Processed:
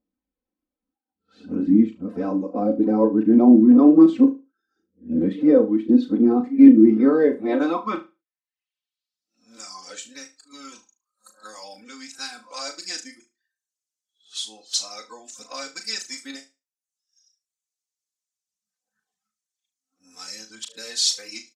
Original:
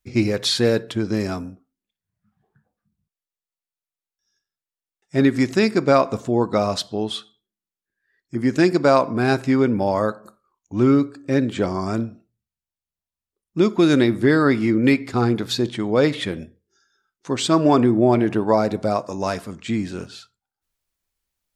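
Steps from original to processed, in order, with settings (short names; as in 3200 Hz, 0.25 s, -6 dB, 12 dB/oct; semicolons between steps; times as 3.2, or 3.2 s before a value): whole clip reversed; reverb removal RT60 0.53 s; comb 3.9 ms, depth 96%; in parallel at +1 dB: compressor, threshold -29 dBFS, peak gain reduction 20 dB; on the sum: band-pass sweep 290 Hz -> 6600 Hz, 6.76–9.45; phaser 0.58 Hz, delay 4.2 ms, feedback 33%; on a send: flutter echo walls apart 6.3 m, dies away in 0.26 s; on the sum: gain +2.5 dB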